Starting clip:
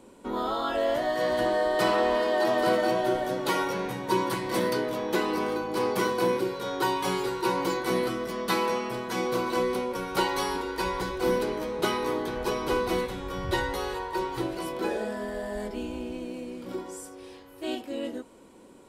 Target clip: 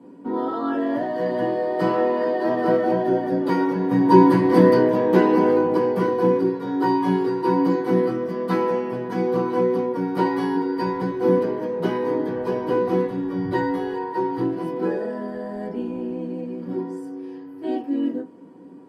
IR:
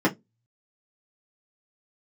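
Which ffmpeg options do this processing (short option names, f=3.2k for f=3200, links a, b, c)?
-filter_complex "[0:a]asettb=1/sr,asplit=3[a][b][c];[a]atrim=end=3.914[d];[b]atrim=start=3.91:end=5.77,asetpts=PTS-STARTPTS,afade=t=in:d=0.004:c=qsin,afade=t=out:st=1.856:d=0.004:c=qsin,acontrast=56[e];[c]atrim=start=5.766[f];[d][e]acrossfade=d=0.004:c1=hsin:c2=qsin[g];[g][f]acrossfade=d=0.004:c1=qsin:c2=hsin[h];[1:a]atrim=start_sample=2205,asetrate=40131,aresample=44100[i];[h][i]afir=irnorm=-1:irlink=0,volume=-15.5dB"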